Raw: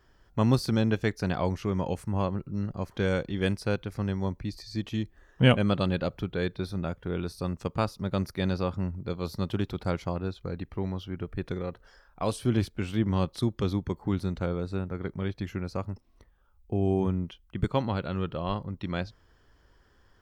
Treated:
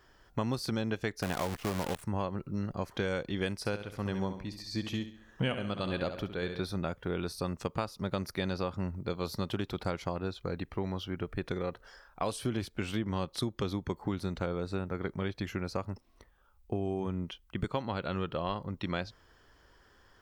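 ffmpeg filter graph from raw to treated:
-filter_complex "[0:a]asettb=1/sr,asplit=3[a][b][c];[a]atrim=end=1.224[d];[b]atrim=start=1.22:end=2.03,asetpts=PTS-STARTPTS,afade=t=in:d=0.004:c=qsin,afade=t=out:st=0.806:d=0.004:c=qsin,asuperstop=centerf=5300:order=4:qfactor=1.5,acrusher=bits=6:dc=4:mix=0:aa=0.000001[e];[c]atrim=start=2.026[f];[d][e]acrossfade=d=0.004:c1=hsin:c2=qsin[g];[g][f]acrossfade=d=0.004:c1=qsin:c2=hsin,asettb=1/sr,asplit=3[h][i][j];[h]atrim=end=3.584[k];[i]atrim=start=3.58:end=6.61,asetpts=PTS-STARTPTS,afade=t=in:d=0.004:c=qsin,afade=t=out:st=3.026:d=0.004:c=qsin,aecho=1:1:68|136|204|272|340:0.316|0.142|0.064|0.0288|0.013,atrim=end_sample=133623,tremolo=f=1.6:d=0.53[l];[j]atrim=start=6.606[m];[k][l]acrossfade=d=0.004:c1=hsin:c2=qsin[n];[n][m]acrossfade=d=0.004:c1=qsin:c2=hsin,lowshelf=f=280:g=-7.5,acompressor=threshold=-33dB:ratio=6,volume=4dB"

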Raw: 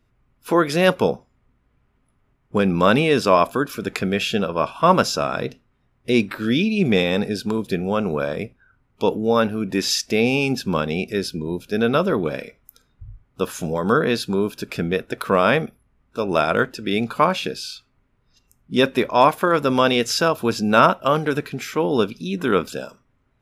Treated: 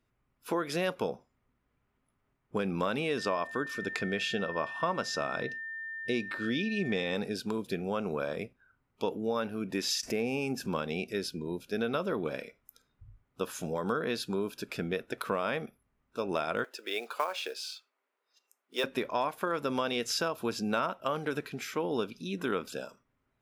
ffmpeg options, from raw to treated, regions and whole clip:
-filter_complex "[0:a]asettb=1/sr,asplit=3[a][b][c];[a]atrim=end=3.184[d];[b]atrim=start=3.18:end=7.15,asetpts=PTS-STARTPTS,afade=t=in:d=0.004:c=qsin,afade=t=out:st=3.966:d=0.004:c=qsin,lowpass=8.2k,aeval=exprs='val(0)+0.0355*sin(2*PI*1800*n/s)':c=same[e];[c]atrim=start=7.146[f];[d][e]acrossfade=d=0.004:c1=hsin:c2=qsin[g];[g][f]acrossfade=d=0.004:c1=qsin:c2=hsin,asettb=1/sr,asplit=3[h][i][j];[h]atrim=end=10.034[k];[i]atrim=start=10.03:end=10.67,asetpts=PTS-STARTPTS,afade=t=in:d=0.004:c=qsin,afade=t=out:st=0.636:d=0.004:c=qsin,equalizer=f=3.7k:t=o:w=0.84:g=-11.5,acompressor=mode=upward:threshold=-21dB:ratio=2.5:attack=3.2:release=140:knee=2.83:detection=peak,asoftclip=type=hard:threshold=-9dB[l];[j]atrim=start=10.666[m];[k][l]acrossfade=d=0.004:c1=hsin:c2=qsin[n];[n][m]acrossfade=d=0.004:c1=qsin:c2=hsin,asettb=1/sr,asplit=3[o][p][q];[o]atrim=end=16.644[r];[p]atrim=start=16.64:end=18.84,asetpts=PTS-STARTPTS,afade=t=in:d=0.004:c=qsin,afade=t=out:st=2.196:d=0.004:c=qsin,highpass=f=410:w=0.5412,highpass=f=410:w=1.3066,acrusher=bits=5:mode=log:mix=0:aa=0.000001[s];[q]atrim=start=18.836[t];[r][s]acrossfade=d=0.004:c1=hsin:c2=qsin[u];[u][t]acrossfade=d=0.004:c1=qsin:c2=hsin,lowshelf=f=150:g=-8,acompressor=threshold=-19dB:ratio=6,volume=-8dB"

